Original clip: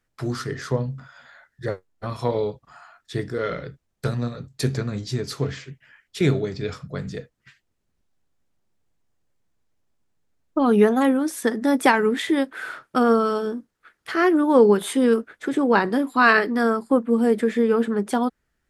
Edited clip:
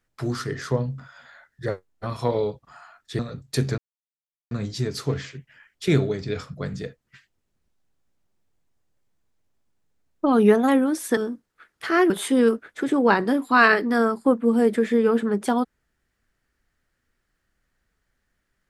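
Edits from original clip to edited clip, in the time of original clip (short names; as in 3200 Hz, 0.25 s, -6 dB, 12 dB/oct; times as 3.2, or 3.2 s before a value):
3.19–4.25 cut
4.84 insert silence 0.73 s
11.5–13.42 cut
14.35–14.75 cut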